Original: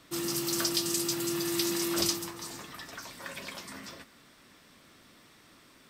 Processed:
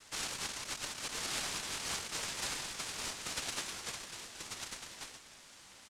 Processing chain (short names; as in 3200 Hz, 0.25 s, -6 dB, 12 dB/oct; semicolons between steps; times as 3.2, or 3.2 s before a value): Chebyshev high-pass 2700 Hz, order 2; negative-ratio compressor -40 dBFS, ratio -1; noise vocoder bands 1; echo 1.141 s -4 dB; ring modulator with a swept carrier 620 Hz, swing 25%, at 5.9 Hz; gain +4 dB